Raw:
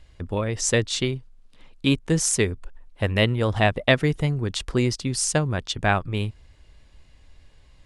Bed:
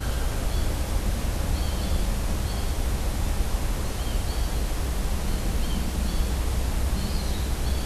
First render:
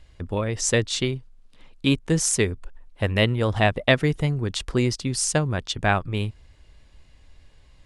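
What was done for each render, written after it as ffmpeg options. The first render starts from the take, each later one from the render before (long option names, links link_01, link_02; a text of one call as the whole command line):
ffmpeg -i in.wav -af anull out.wav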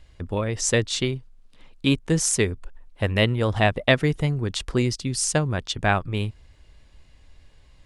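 ffmpeg -i in.wav -filter_complex "[0:a]asettb=1/sr,asplit=3[link_01][link_02][link_03];[link_01]atrim=end=4.824[link_04];[link_02]atrim=start=4.82:end=5.23,asetpts=PTS-STARTPTS,afade=type=in:duration=0.004:curve=qsin,afade=type=out:start_time=0.406:duration=0.004:curve=qsin,equalizer=frequency=880:width=0.61:gain=-5[link_05];[link_03]atrim=start=5.226[link_06];[link_04][link_05]acrossfade=duration=0.004:curve1=hsin:curve2=qsin[link_07];[link_07][link_06]acrossfade=duration=0.004:curve1=qsin:curve2=hsin" out.wav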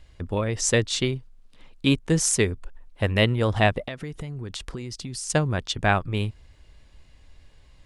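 ffmpeg -i in.wav -filter_complex "[0:a]asettb=1/sr,asplit=3[link_01][link_02][link_03];[link_01]atrim=end=3.864[link_04];[link_02]atrim=start=3.86:end=5.3,asetpts=PTS-STARTPTS,afade=type=in:duration=0.004:curve=qsin,afade=type=out:start_time=1.436:duration=0.004:curve=qsin,acompressor=threshold=-30dB:ratio=8:attack=3.2:release=140:knee=1:detection=peak[link_05];[link_03]atrim=start=5.296[link_06];[link_04][link_05]acrossfade=duration=0.004:curve1=hsin:curve2=qsin[link_07];[link_07][link_06]acrossfade=duration=0.004:curve1=qsin:curve2=hsin" out.wav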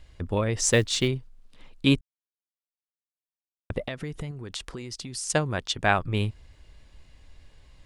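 ffmpeg -i in.wav -filter_complex "[0:a]asettb=1/sr,asplit=3[link_01][link_02][link_03];[link_01]atrim=end=0.614[link_04];[link_02]atrim=start=0.61:end=1.08,asetpts=PTS-STARTPTS,afade=type=in:duration=0.004:curve=qsin,afade=type=out:start_time=0.466:duration=0.004:curve=qsin,acrusher=bits=8:mode=log:mix=0:aa=0.000001[link_05];[link_03]atrim=start=1.076[link_06];[link_04][link_05]acrossfade=duration=0.004:curve1=hsin:curve2=qsin[link_07];[link_07][link_06]acrossfade=duration=0.004:curve1=qsin:curve2=hsin,asettb=1/sr,asplit=3[link_08][link_09][link_10];[link_08]atrim=end=4.314[link_11];[link_09]atrim=start=4.31:end=5.99,asetpts=PTS-STARTPTS,afade=type=in:duration=0.004:curve=qsin,afade=type=out:start_time=1.676:duration=0.004:curve=qsin,lowshelf=frequency=230:gain=-7[link_12];[link_10]atrim=start=5.986[link_13];[link_11][link_12]acrossfade=duration=0.004:curve1=hsin:curve2=qsin[link_14];[link_14][link_13]acrossfade=duration=0.004:curve1=qsin:curve2=hsin,asplit=3[link_15][link_16][link_17];[link_15]atrim=end=2.01,asetpts=PTS-STARTPTS,afade=type=out:start_time=2.006:duration=0.004:curve=hsin[link_18];[link_16]atrim=start=2.01:end=3.7,asetpts=PTS-STARTPTS,volume=0[link_19];[link_17]atrim=start=3.7,asetpts=PTS-STARTPTS,afade=type=in:duration=0.004:curve=hsin[link_20];[link_18][link_19][link_20]concat=n=3:v=0:a=1" out.wav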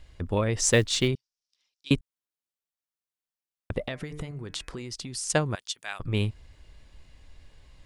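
ffmpeg -i in.wav -filter_complex "[0:a]asettb=1/sr,asplit=3[link_01][link_02][link_03];[link_01]atrim=end=1.154[link_04];[link_02]atrim=start=1.15:end=1.91,asetpts=PTS-STARTPTS,afade=type=in:duration=0.004:curve=qsin,afade=type=out:start_time=0.756:duration=0.004:curve=qsin,bandpass=frequency=5500:width_type=q:width=5.6[link_05];[link_03]atrim=start=1.906[link_06];[link_04][link_05]acrossfade=duration=0.004:curve1=hsin:curve2=qsin[link_07];[link_07][link_06]acrossfade=duration=0.004:curve1=qsin:curve2=hsin,asettb=1/sr,asplit=3[link_08][link_09][link_10];[link_08]atrim=end=3.824[link_11];[link_09]atrim=start=3.82:end=4.8,asetpts=PTS-STARTPTS,afade=type=in:duration=0.004:curve=qsin,afade=type=out:start_time=0.976:duration=0.004:curve=qsin,bandreject=frequency=149.7:width_type=h:width=4,bandreject=frequency=299.4:width_type=h:width=4,bandreject=frequency=449.1:width_type=h:width=4,bandreject=frequency=598.8:width_type=h:width=4,bandreject=frequency=748.5:width_type=h:width=4,bandreject=frequency=898.2:width_type=h:width=4,bandreject=frequency=1047.9:width_type=h:width=4,bandreject=frequency=1197.6:width_type=h:width=4,bandreject=frequency=1347.3:width_type=h:width=4,bandreject=frequency=1497:width_type=h:width=4,bandreject=frequency=1646.7:width_type=h:width=4,bandreject=frequency=1796.4:width_type=h:width=4,bandreject=frequency=1946.1:width_type=h:width=4,bandreject=frequency=2095.8:width_type=h:width=4,bandreject=frequency=2245.5:width_type=h:width=4,bandreject=frequency=2395.2:width_type=h:width=4,bandreject=frequency=2544.9:width_type=h:width=4[link_12];[link_10]atrim=start=4.796[link_13];[link_11][link_12]acrossfade=duration=0.004:curve1=hsin:curve2=qsin[link_14];[link_14][link_13]acrossfade=duration=0.004:curve1=qsin:curve2=hsin,asettb=1/sr,asplit=3[link_15][link_16][link_17];[link_15]atrim=end=5.554[link_18];[link_16]atrim=start=5.55:end=6,asetpts=PTS-STARTPTS,afade=type=in:duration=0.004:curve=qsin,afade=type=out:start_time=0.446:duration=0.004:curve=qsin,aderivative[link_19];[link_17]atrim=start=5.996[link_20];[link_18][link_19]acrossfade=duration=0.004:curve1=hsin:curve2=qsin[link_21];[link_21][link_20]acrossfade=duration=0.004:curve1=qsin:curve2=hsin" out.wav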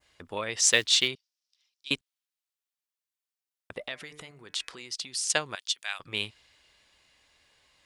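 ffmpeg -i in.wav -af "highpass=frequency=1100:poles=1,adynamicequalizer=threshold=0.00631:dfrequency=3500:dqfactor=0.8:tfrequency=3500:tqfactor=0.8:attack=5:release=100:ratio=0.375:range=3.5:mode=boostabove:tftype=bell" out.wav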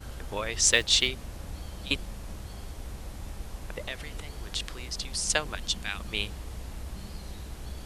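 ffmpeg -i in.wav -i bed.wav -filter_complex "[1:a]volume=-13.5dB[link_01];[0:a][link_01]amix=inputs=2:normalize=0" out.wav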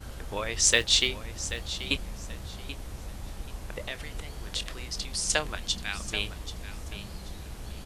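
ffmpeg -i in.wav -filter_complex "[0:a]asplit=2[link_01][link_02];[link_02]adelay=26,volume=-14dB[link_03];[link_01][link_03]amix=inputs=2:normalize=0,aecho=1:1:783|1566|2349:0.224|0.0537|0.0129" out.wav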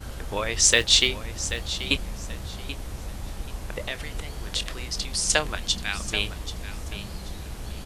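ffmpeg -i in.wav -af "volume=4.5dB,alimiter=limit=-2dB:level=0:latency=1" out.wav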